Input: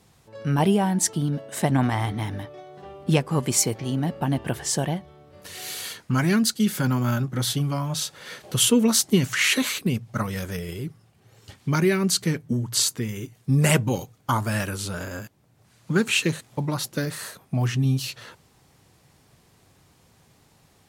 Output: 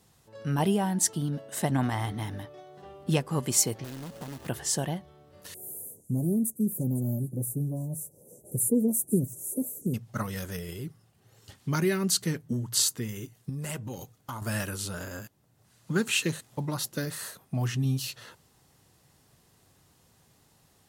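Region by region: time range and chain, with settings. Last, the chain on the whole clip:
3.84–4.49 compressor, threshold -31 dBFS + companded quantiser 4-bit + Doppler distortion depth 0.75 ms
5.54–9.94 inverse Chebyshev band-stop 1400–4300 Hz, stop band 60 dB + delay with a stepping band-pass 0.167 s, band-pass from 3300 Hz, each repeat 0.7 oct, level -7 dB
13.49–14.42 compressor 3:1, threshold -30 dBFS + overloaded stage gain 23.5 dB
whole clip: high shelf 7300 Hz +6.5 dB; notch 2300 Hz, Q 14; gain -5.5 dB

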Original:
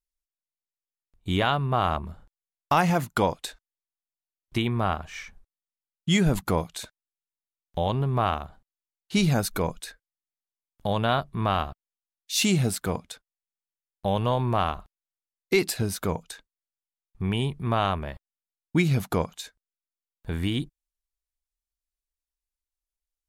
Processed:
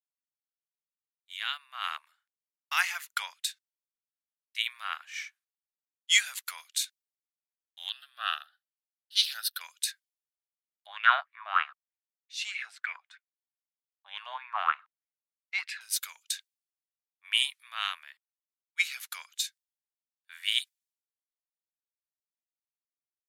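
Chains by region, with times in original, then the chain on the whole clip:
7.89–9.61 fixed phaser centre 1500 Hz, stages 8 + Doppler distortion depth 0.16 ms
10.86–15.81 tape spacing loss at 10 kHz 21 dB + LFO bell 3.2 Hz 630–2400 Hz +17 dB
whole clip: inverse Chebyshev high-pass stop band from 280 Hz, stop band 80 dB; vocal rider 0.5 s; three-band expander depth 100%

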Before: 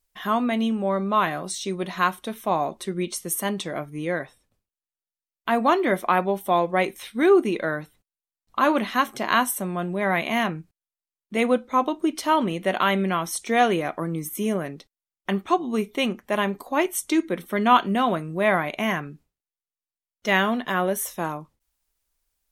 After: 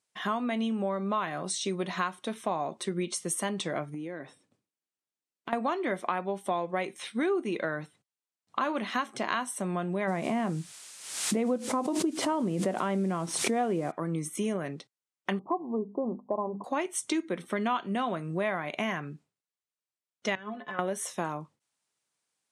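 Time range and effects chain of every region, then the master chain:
3.94–5.53 bell 290 Hz +8.5 dB 1.1 oct + compressor, threshold -35 dBFS
10.07–13.9 tilt shelf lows +9.5 dB, about 1200 Hz + added noise blue -41 dBFS + backwards sustainer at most 68 dB/s
15.39–16.64 steep low-pass 1100 Hz 96 dB/oct + low shelf 140 Hz -6.5 dB + notches 50/100/150/200/250 Hz
20.35–20.79 high shelf 3000 Hz -12 dB + compressor 2.5:1, threshold -26 dBFS + metallic resonator 63 Hz, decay 0.27 s, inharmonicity 0.03
whole clip: elliptic band-pass 120–9100 Hz, stop band 40 dB; compressor 5:1, threshold -27 dBFS

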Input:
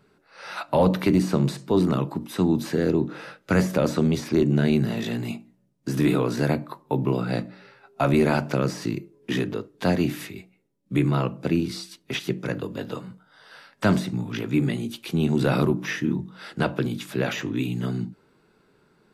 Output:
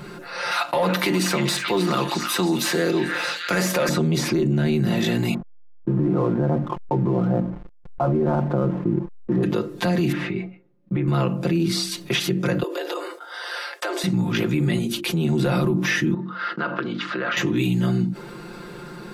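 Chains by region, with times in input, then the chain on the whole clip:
0.51–3.89 HPF 910 Hz 6 dB/oct + sample leveller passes 1 + delay with a stepping band-pass 0.314 s, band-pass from 2000 Hz, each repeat 0.7 oct, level -4 dB
5.34–9.43 LPF 1200 Hz 24 dB/oct + backlash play -39 dBFS + mismatched tape noise reduction decoder only
10.12–11.08 expander -52 dBFS + LPF 2000 Hz + compressor, threshold -27 dBFS
12.63–14.04 steep high-pass 330 Hz 72 dB/oct + expander -58 dBFS + compressor 4:1, threshold -38 dBFS
14.78–15.25 gate -46 dBFS, range -24 dB + notches 50/100/150/200/250/300/350 Hz + compressor 2:1, threshold -33 dBFS
16.14–17.37 expander -43 dBFS + compressor, threshold -27 dBFS + speaker cabinet 360–3700 Hz, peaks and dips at 370 Hz -5 dB, 530 Hz -5 dB, 780 Hz -9 dB, 1300 Hz +7 dB, 2400 Hz -8 dB, 3500 Hz -8 dB
whole clip: comb 5.7 ms, depth 80%; limiter -17 dBFS; fast leveller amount 50%; gain +3 dB

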